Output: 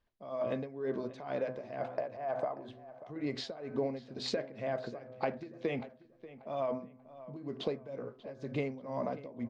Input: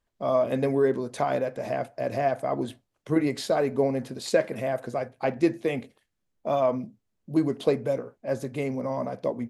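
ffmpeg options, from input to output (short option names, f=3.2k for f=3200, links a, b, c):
-filter_complex "[0:a]lowpass=f=5.2k:w=0.5412,lowpass=f=5.2k:w=1.3066,bandreject=f=127.3:t=h:w=4,bandreject=f=254.6:t=h:w=4,bandreject=f=381.9:t=h:w=4,bandreject=f=509.2:t=h:w=4,bandreject=f=636.5:t=h:w=4,bandreject=f=763.8:t=h:w=4,bandreject=f=891.1:t=h:w=4,bandreject=f=1.0184k:t=h:w=4,bandreject=f=1.1457k:t=h:w=4,bandreject=f=1.273k:t=h:w=4,bandreject=f=1.4003k:t=h:w=4,bandreject=f=1.5276k:t=h:w=4,bandreject=f=1.6549k:t=h:w=4,asplit=3[a][b][c];[a]afade=t=out:st=1.81:d=0.02[d];[b]equalizer=f=870:w=0.66:g=12,afade=t=in:st=1.81:d=0.02,afade=t=out:st=2.69:d=0.02[e];[c]afade=t=in:st=2.69:d=0.02[f];[d][e][f]amix=inputs=3:normalize=0,alimiter=limit=-16dB:level=0:latency=1:release=58,acompressor=threshold=-29dB:ratio=6,tremolo=f=2.1:d=0.84,asplit=2[g][h];[h]adelay=587,lowpass=f=3.1k:p=1,volume=-16dB,asplit=2[i][j];[j]adelay=587,lowpass=f=3.1k:p=1,volume=0.32,asplit=2[k][l];[l]adelay=587,lowpass=f=3.1k:p=1,volume=0.32[m];[g][i][k][m]amix=inputs=4:normalize=0"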